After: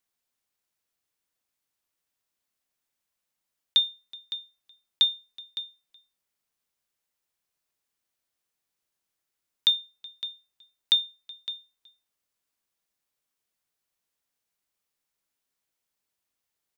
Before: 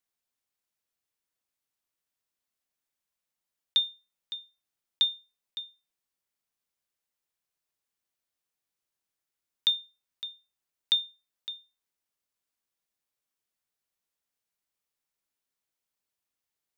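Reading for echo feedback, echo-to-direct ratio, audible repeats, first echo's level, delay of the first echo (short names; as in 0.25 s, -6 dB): no steady repeat, -23.0 dB, 1, -23.0 dB, 0.373 s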